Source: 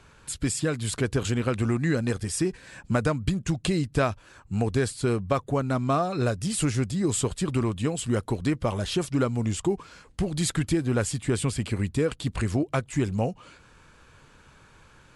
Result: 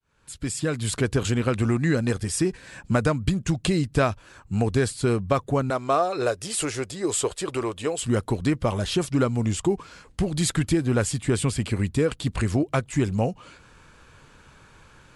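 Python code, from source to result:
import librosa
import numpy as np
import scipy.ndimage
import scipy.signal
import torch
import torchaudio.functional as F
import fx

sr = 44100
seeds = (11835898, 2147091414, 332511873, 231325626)

y = fx.fade_in_head(x, sr, length_s=0.83)
y = fx.low_shelf_res(y, sr, hz=300.0, db=-11.0, q=1.5, at=(5.7, 8.03))
y = y * 10.0 ** (2.5 / 20.0)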